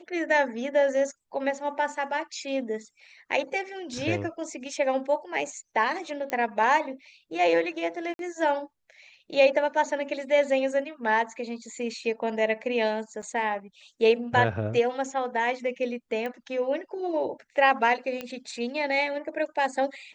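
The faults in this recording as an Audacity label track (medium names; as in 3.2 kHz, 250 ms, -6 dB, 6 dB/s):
6.300000	6.300000	pop -16 dBFS
8.140000	8.190000	dropout 52 ms
13.220000	13.230000	dropout 6.8 ms
16.260000	16.260000	pop -21 dBFS
18.210000	18.210000	pop -19 dBFS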